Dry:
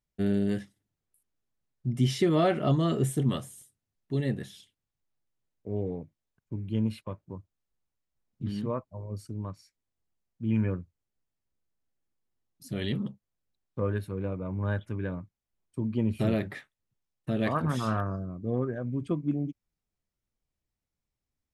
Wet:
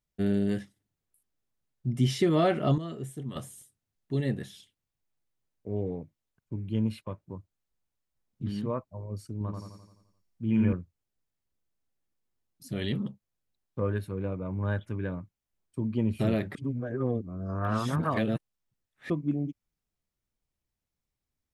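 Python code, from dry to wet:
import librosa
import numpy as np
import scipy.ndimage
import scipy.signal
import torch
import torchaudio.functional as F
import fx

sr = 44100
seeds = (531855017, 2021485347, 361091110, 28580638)

y = fx.echo_feedback(x, sr, ms=86, feedback_pct=55, wet_db=-3.5, at=(9.32, 10.73))
y = fx.edit(y, sr, fx.clip_gain(start_s=2.78, length_s=0.58, db=-11.0),
    fx.reverse_span(start_s=16.55, length_s=2.55), tone=tone)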